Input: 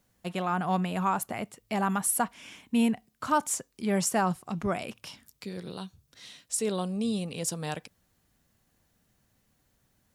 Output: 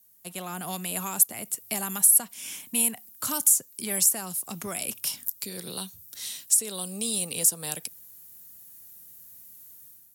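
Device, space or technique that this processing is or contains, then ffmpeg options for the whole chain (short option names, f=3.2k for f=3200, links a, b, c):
FM broadcast chain: -filter_complex "[0:a]highpass=71,dynaudnorm=f=340:g=3:m=11dB,acrossover=split=250|560|2100|6900[a][b][c][d][e];[a]acompressor=threshold=-33dB:ratio=4[f];[b]acompressor=threshold=-30dB:ratio=4[g];[c]acompressor=threshold=-32dB:ratio=4[h];[d]acompressor=threshold=-32dB:ratio=4[i];[e]acompressor=threshold=-27dB:ratio=4[j];[f][g][h][i][j]amix=inputs=5:normalize=0,aemphasis=mode=production:type=50fm,alimiter=limit=-9dB:level=0:latency=1:release=440,asoftclip=type=hard:threshold=-10dB,lowpass=f=15k:w=0.5412,lowpass=f=15k:w=1.3066,aemphasis=mode=production:type=50fm,volume=-9dB"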